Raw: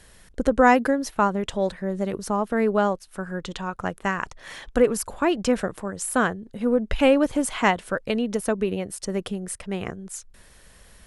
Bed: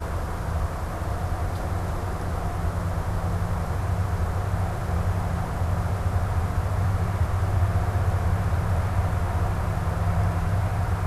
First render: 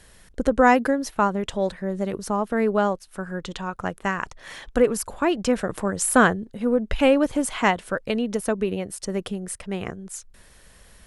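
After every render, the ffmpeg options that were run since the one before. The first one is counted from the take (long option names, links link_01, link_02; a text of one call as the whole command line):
ffmpeg -i in.wav -filter_complex "[0:a]asettb=1/sr,asplit=3[link_01][link_02][link_03];[link_01]atrim=end=5.694[link_04];[link_02]atrim=start=5.69:end=6.45,asetpts=PTS-STARTPTS,afade=type=in:duration=0.004:curve=qsin,afade=type=out:start_time=0.756:duration=0.004:curve=qsin,acontrast=50[link_05];[link_03]atrim=start=6.446[link_06];[link_04][link_05]acrossfade=duration=0.004:curve1=hsin:curve2=qsin[link_07];[link_07][link_06]acrossfade=duration=0.004:curve1=qsin:curve2=hsin" out.wav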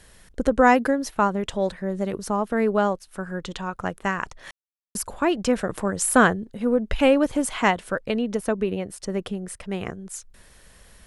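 ffmpeg -i in.wav -filter_complex "[0:a]asettb=1/sr,asplit=3[link_01][link_02][link_03];[link_01]atrim=end=8.004[link_04];[link_02]atrim=start=8:end=9.61,asetpts=PTS-STARTPTS,afade=type=in:duration=0.004:curve=qsin,afade=type=out:start_time=1.606:duration=0.004:curve=qsin,highshelf=frequency=5100:gain=-6[link_05];[link_03]atrim=start=9.606[link_06];[link_04][link_05]acrossfade=duration=0.004:curve1=hsin:curve2=qsin[link_07];[link_07][link_06]acrossfade=duration=0.004:curve1=qsin:curve2=hsin,asplit=3[link_08][link_09][link_10];[link_08]atrim=end=4.51,asetpts=PTS-STARTPTS,afade=type=out:start_time=4.506:duration=0.004:curve=hsin[link_11];[link_09]atrim=start=4.51:end=4.95,asetpts=PTS-STARTPTS,volume=0[link_12];[link_10]atrim=start=4.95,asetpts=PTS-STARTPTS,afade=type=in:duration=0.004:curve=hsin[link_13];[link_11][link_12][link_13]concat=n=3:v=0:a=1" out.wav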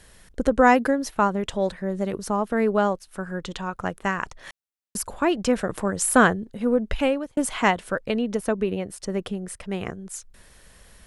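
ffmpeg -i in.wav -filter_complex "[0:a]asplit=2[link_01][link_02];[link_01]atrim=end=7.37,asetpts=PTS-STARTPTS,afade=type=out:start_time=6.87:duration=0.5[link_03];[link_02]atrim=start=7.37,asetpts=PTS-STARTPTS,afade=type=in:duration=0.004:curve=hsin[link_04];[link_03][link_04]concat=n=2:v=0:a=1" out.wav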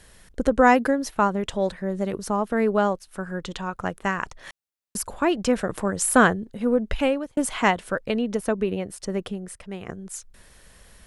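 ffmpeg -i in.wav -filter_complex "[0:a]asplit=2[link_01][link_02];[link_01]atrim=end=9.89,asetpts=PTS-STARTPTS,afade=type=out:start_time=9.13:duration=0.76:silence=0.398107[link_03];[link_02]atrim=start=9.89,asetpts=PTS-STARTPTS,afade=type=in:duration=0.004:curve=hsin:silence=0.398107[link_04];[link_03][link_04]concat=n=2:v=0:a=1" out.wav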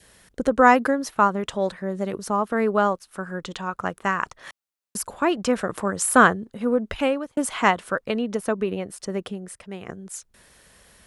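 ffmpeg -i in.wav -af "highpass=frequency=120:poles=1,adynamicequalizer=threshold=0.0158:dfrequency=1200:dqfactor=2.4:tfrequency=1200:tqfactor=2.4:attack=5:release=100:ratio=0.375:range=3:mode=boostabove:tftype=bell" out.wav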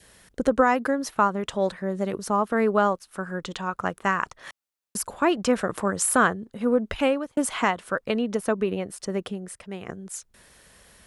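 ffmpeg -i in.wav -af "alimiter=limit=-9dB:level=0:latency=1:release=401" out.wav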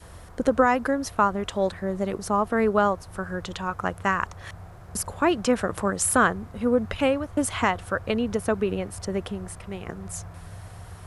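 ffmpeg -i in.wav -i bed.wav -filter_complex "[1:a]volume=-17dB[link_01];[0:a][link_01]amix=inputs=2:normalize=0" out.wav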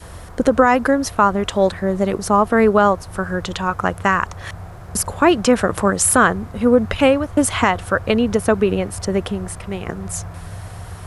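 ffmpeg -i in.wav -af "volume=8.5dB,alimiter=limit=-3dB:level=0:latency=1" out.wav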